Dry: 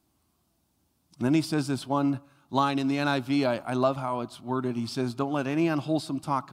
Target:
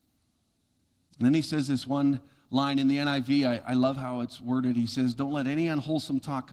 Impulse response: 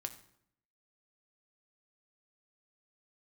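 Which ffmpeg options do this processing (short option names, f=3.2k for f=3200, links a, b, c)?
-af "equalizer=f=100:t=o:w=0.33:g=9,equalizer=f=250:t=o:w=0.33:g=8,equalizer=f=400:t=o:w=0.33:g=-10,equalizer=f=1k:t=o:w=0.33:g=-10,equalizer=f=2k:t=o:w=0.33:g=3,equalizer=f=4k:t=o:w=0.33:g=7,volume=-1.5dB" -ar 48000 -c:a libopus -b:a 16k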